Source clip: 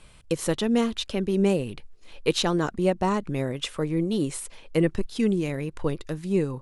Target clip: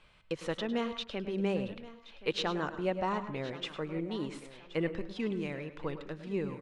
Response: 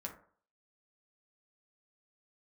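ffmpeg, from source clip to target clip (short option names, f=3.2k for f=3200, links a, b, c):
-filter_complex "[0:a]lowpass=3.3k,lowshelf=f=500:g=-9.5,aecho=1:1:1074|2148|3222:0.141|0.048|0.0163,asplit=2[a][b];[1:a]atrim=start_sample=2205,adelay=103[c];[b][c]afir=irnorm=-1:irlink=0,volume=-9dB[d];[a][d]amix=inputs=2:normalize=0,volume=-4dB"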